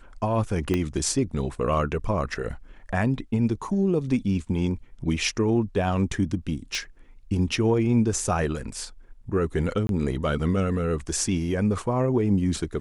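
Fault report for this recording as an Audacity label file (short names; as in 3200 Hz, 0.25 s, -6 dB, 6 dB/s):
0.740000	0.740000	pop -12 dBFS
6.750000	6.750000	pop -16 dBFS
9.870000	9.890000	gap 22 ms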